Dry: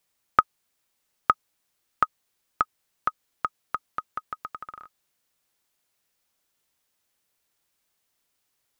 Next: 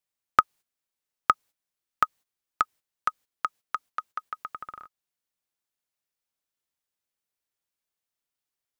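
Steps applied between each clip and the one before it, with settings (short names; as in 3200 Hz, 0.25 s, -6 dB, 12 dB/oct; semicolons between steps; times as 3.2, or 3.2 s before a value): gate -45 dBFS, range -13 dB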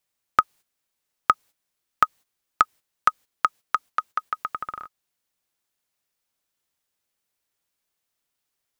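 maximiser +8.5 dB; gain -1 dB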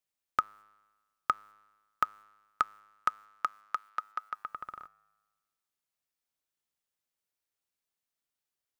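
resonator 52 Hz, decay 1.3 s, harmonics odd, mix 40%; gain -5.5 dB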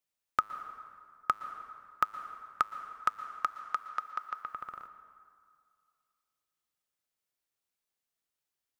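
plate-style reverb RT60 2.2 s, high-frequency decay 0.6×, pre-delay 0.105 s, DRR 11 dB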